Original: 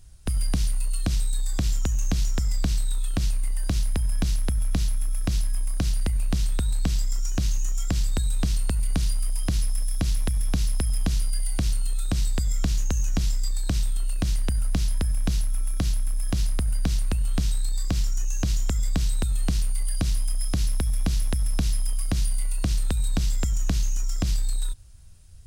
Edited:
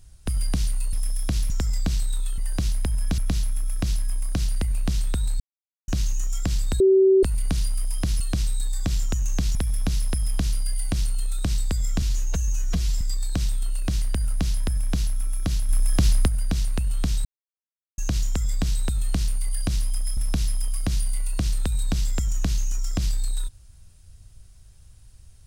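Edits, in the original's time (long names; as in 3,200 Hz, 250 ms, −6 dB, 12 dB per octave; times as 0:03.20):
0:00.93–0:02.28: swap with 0:09.65–0:10.22
0:03.16–0:03.49: remove
0:04.29–0:04.63: remove
0:06.85–0:07.33: silence
0:08.25–0:08.68: beep over 383 Hz −12.5 dBFS
0:12.69–0:13.35: time-stretch 1.5×
0:16.03–0:16.62: clip gain +5.5 dB
0:17.59–0:18.32: silence
0:20.51–0:21.42: remove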